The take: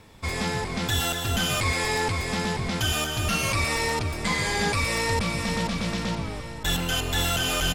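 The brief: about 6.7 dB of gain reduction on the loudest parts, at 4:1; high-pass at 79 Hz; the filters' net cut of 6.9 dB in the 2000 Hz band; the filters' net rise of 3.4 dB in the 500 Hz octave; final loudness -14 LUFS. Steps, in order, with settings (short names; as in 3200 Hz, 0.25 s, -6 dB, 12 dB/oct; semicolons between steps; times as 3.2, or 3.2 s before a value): HPF 79 Hz; bell 500 Hz +4.5 dB; bell 2000 Hz -9 dB; compressor 4:1, threshold -29 dBFS; gain +18 dB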